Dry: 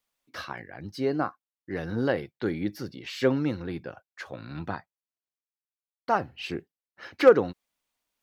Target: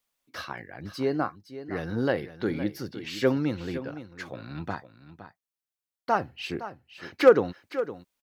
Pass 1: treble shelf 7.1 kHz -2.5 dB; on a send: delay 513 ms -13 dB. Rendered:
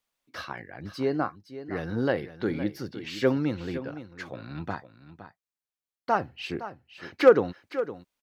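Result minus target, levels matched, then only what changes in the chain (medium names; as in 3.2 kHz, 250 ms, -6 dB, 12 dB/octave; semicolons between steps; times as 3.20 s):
8 kHz band -2.5 dB
change: treble shelf 7.1 kHz +3.5 dB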